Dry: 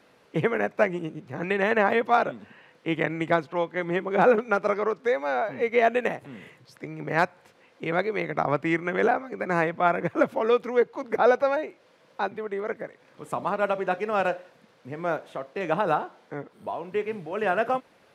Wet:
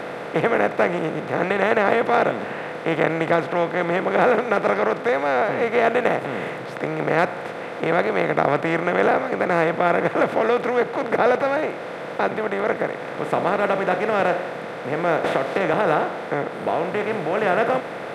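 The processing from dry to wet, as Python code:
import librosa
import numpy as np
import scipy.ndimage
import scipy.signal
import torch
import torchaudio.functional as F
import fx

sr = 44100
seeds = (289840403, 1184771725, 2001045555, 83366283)

y = fx.bin_compress(x, sr, power=0.4)
y = fx.band_squash(y, sr, depth_pct=100, at=(15.24, 15.74))
y = y * librosa.db_to_amplitude(-2.5)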